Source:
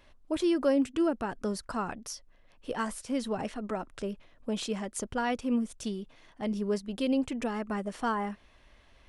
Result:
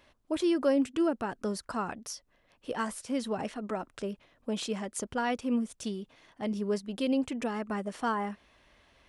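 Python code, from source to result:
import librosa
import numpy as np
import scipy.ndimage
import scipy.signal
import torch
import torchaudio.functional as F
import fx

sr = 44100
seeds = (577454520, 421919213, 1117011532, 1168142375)

y = fx.highpass(x, sr, hz=99.0, slope=6)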